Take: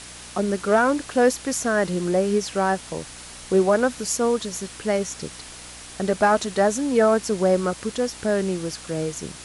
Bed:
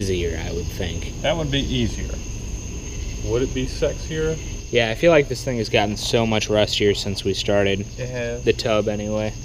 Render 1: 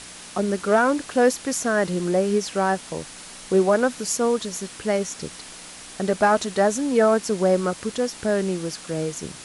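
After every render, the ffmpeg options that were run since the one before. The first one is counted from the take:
-af "bandreject=f=60:t=h:w=4,bandreject=f=120:t=h:w=4"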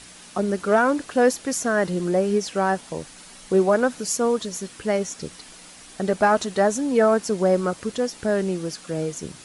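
-af "afftdn=nr=6:nf=-41"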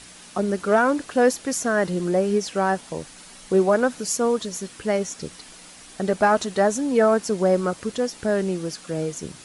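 -af anull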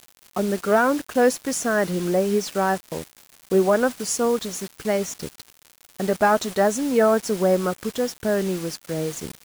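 -af "acrusher=bits=5:mix=0:aa=0.000001"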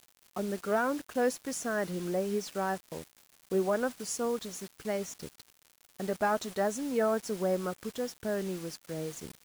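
-af "volume=-10.5dB"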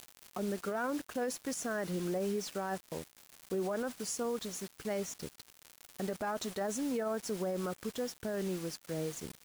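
-af "alimiter=level_in=3.5dB:limit=-24dB:level=0:latency=1:release=33,volume=-3.5dB,acompressor=mode=upward:threshold=-43dB:ratio=2.5"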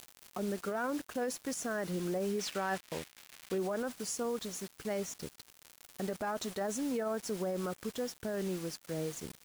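-filter_complex "[0:a]asettb=1/sr,asplit=3[a][b][c];[a]atrim=end=2.394[d];[b]atrim=start=2.39:end=3.58,asetpts=PTS-STARTPTS,afade=t=in:d=0.004:c=qsin,afade=t=out:st=1.186:d=0.004:c=qsin,equalizer=f=2.4k:w=0.59:g=8[e];[c]atrim=start=3.576[f];[d][e]acrossfade=d=0.004:c1=hsin:c2=qsin[g];[g][f]acrossfade=d=0.004:c1=qsin:c2=hsin"

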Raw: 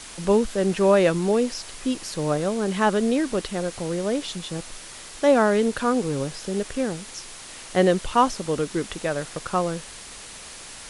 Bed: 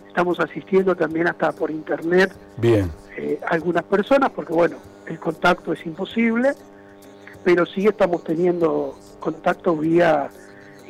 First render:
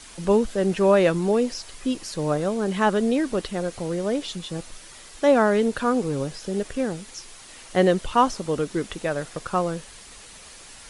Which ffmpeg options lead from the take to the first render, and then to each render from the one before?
-af "afftdn=nr=6:nf=-41"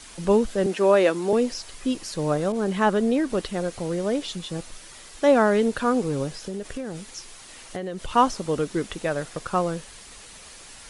-filter_complex "[0:a]asettb=1/sr,asplit=3[a][b][c];[a]atrim=end=0.664[d];[b]atrim=start=0.66:end=1.33,asetpts=PTS-STARTPTS,afade=t=in:d=0.004:c=qsin,afade=t=out:st=0.666:d=0.004:c=qsin,highpass=f=230:w=0.5412,highpass=f=230:w=1.3066[e];[c]atrim=start=1.326[f];[d][e]acrossfade=d=0.004:c1=hsin:c2=qsin[g];[g][f]acrossfade=d=0.004:c1=qsin:c2=hsin,asettb=1/sr,asplit=3[h][i][j];[h]atrim=end=2.524[k];[i]atrim=start=2.52:end=3.3,asetpts=PTS-STARTPTS,afade=t=in:d=0.004:c=qsin,afade=t=out:st=0.776:d=0.004:c=qsin,adynamicequalizer=threshold=0.0158:dfrequency=2100:dqfactor=0.7:tfrequency=2100:tqfactor=0.7:attack=5:release=100:ratio=0.375:range=2:mode=cutabove:tftype=highshelf[l];[j]atrim=start=3.296[m];[k][l]acrossfade=d=0.004:c1=hsin:c2=qsin[n];[n][m]acrossfade=d=0.004:c1=qsin:c2=hsin,asettb=1/sr,asplit=3[o][p][q];[o]atrim=end=6.384[r];[p]atrim=start=6.38:end=8.14,asetpts=PTS-STARTPTS,afade=t=in:d=0.004:c=qsin,afade=t=out:st=1.756:d=0.004:c=qsin,acompressor=threshold=-27dB:ratio=10:attack=3.2:release=140:knee=1:detection=peak[s];[q]atrim=start=8.136[t];[r][s]acrossfade=d=0.004:c1=hsin:c2=qsin[u];[u][t]acrossfade=d=0.004:c1=qsin:c2=hsin"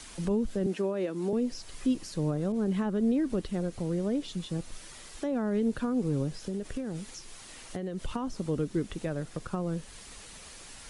-filter_complex "[0:a]alimiter=limit=-15dB:level=0:latency=1:release=168,acrossover=split=340[a][b];[b]acompressor=threshold=-48dB:ratio=2[c];[a][c]amix=inputs=2:normalize=0"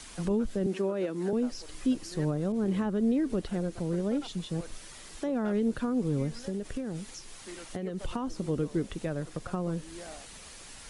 -filter_complex "[1:a]volume=-29.5dB[a];[0:a][a]amix=inputs=2:normalize=0"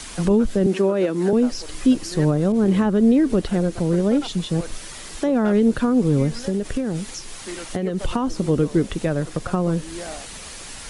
-af "volume=11dB"

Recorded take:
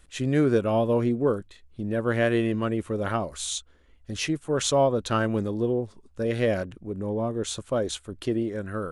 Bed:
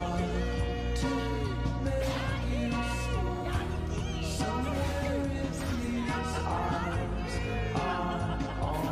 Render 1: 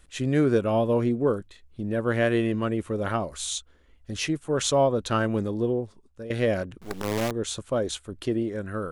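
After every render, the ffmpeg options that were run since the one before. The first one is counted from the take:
-filter_complex "[0:a]asettb=1/sr,asplit=3[a][b][c];[a]atrim=end=6.814[d];[b]atrim=start=6.81:end=7.31,asetpts=PTS-STARTPTS,afade=t=in:d=0.004:c=qsin,afade=t=out:st=0.496:d=0.004:c=qsin,acrusher=bits=5:dc=4:mix=0:aa=0.000001[e];[c]atrim=start=7.306[f];[d][e]acrossfade=d=0.004:c1=hsin:c2=qsin[g];[g][f]acrossfade=d=0.004:c1=qsin:c2=hsin,asplit=2[h][i];[h]atrim=end=6.3,asetpts=PTS-STARTPTS,afade=t=out:st=5.7:d=0.6:silence=0.223872[j];[i]atrim=start=6.3,asetpts=PTS-STARTPTS,afade=t=in:d=0.004:c=hsin:silence=0.223872[k];[j][k]concat=n=2:v=0:a=1"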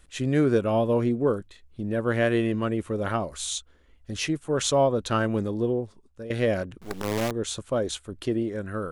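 -af anull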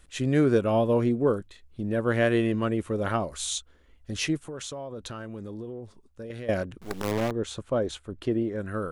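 -filter_complex "[0:a]asettb=1/sr,asplit=3[a][b][c];[a]atrim=end=4.364[d];[b]atrim=start=4.36:end=6.49,asetpts=PTS-STARTPTS,afade=t=in:d=0.004:c=qsin,afade=t=out:st=2.126:d=0.004:c=qsin,acompressor=threshold=-34dB:ratio=8:attack=3.2:release=140:knee=1:detection=peak[e];[c]atrim=start=6.486[f];[d][e]acrossfade=d=0.004:c1=hsin:c2=qsin[g];[g][f]acrossfade=d=0.004:c1=qsin:c2=hsin,asettb=1/sr,asplit=3[h][i][j];[h]atrim=end=7.114[k];[i]atrim=start=7.11:end=8.6,asetpts=PTS-STARTPTS,afade=t=in:d=0.004:c=qsin,afade=t=out:st=1.486:d=0.004:c=qsin,highshelf=f=3.9k:g=-11[l];[j]atrim=start=8.596[m];[k][l]acrossfade=d=0.004:c1=hsin:c2=qsin[n];[n][m]acrossfade=d=0.004:c1=qsin:c2=hsin"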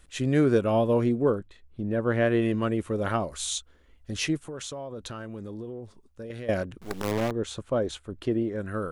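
-filter_complex "[0:a]asettb=1/sr,asplit=3[a][b][c];[a]atrim=end=1.304[d];[b]atrim=start=1.3:end=2.42,asetpts=PTS-STARTPTS,afade=t=in:d=0.004:c=qsin,afade=t=out:st=1.116:d=0.004:c=qsin,highshelf=f=3.6k:g=-11[e];[c]atrim=start=2.416[f];[d][e]acrossfade=d=0.004:c1=hsin:c2=qsin[g];[g][f]acrossfade=d=0.004:c1=qsin:c2=hsin"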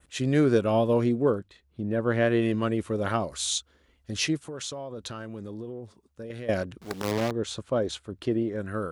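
-af "highpass=62,adynamicequalizer=threshold=0.00355:dfrequency=4700:dqfactor=1.4:tfrequency=4700:tqfactor=1.4:attack=5:release=100:ratio=0.375:range=2.5:mode=boostabove:tftype=bell"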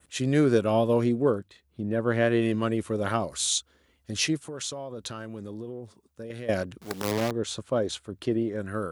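-af "highpass=67,highshelf=f=8k:g=7"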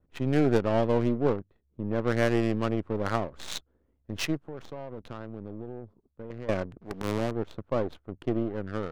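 -af "aeval=exprs='if(lt(val(0),0),0.447*val(0),val(0))':c=same,adynamicsmooth=sensitivity=4:basefreq=670"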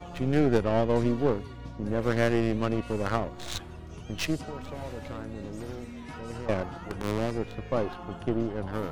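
-filter_complex "[1:a]volume=-10dB[a];[0:a][a]amix=inputs=2:normalize=0"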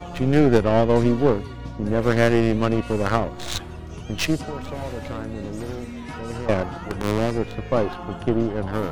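-af "volume=7dB"

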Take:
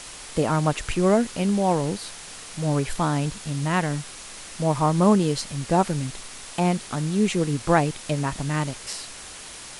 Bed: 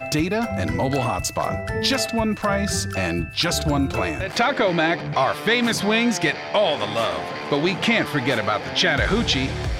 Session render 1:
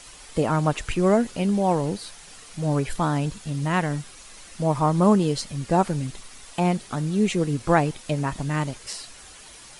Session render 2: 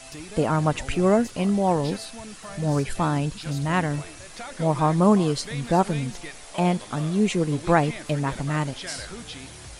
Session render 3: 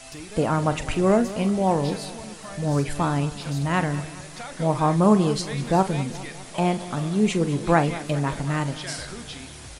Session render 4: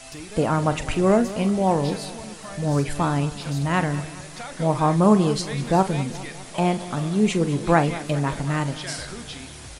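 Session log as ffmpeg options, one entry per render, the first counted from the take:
-af "afftdn=nr=8:nf=-40"
-filter_complex "[1:a]volume=-18.5dB[a];[0:a][a]amix=inputs=2:normalize=0"
-filter_complex "[0:a]asplit=2[a][b];[b]adelay=42,volume=-12.5dB[c];[a][c]amix=inputs=2:normalize=0,aecho=1:1:203|406|609|812|1015:0.158|0.0872|0.0479|0.0264|0.0145"
-af "volume=1dB"

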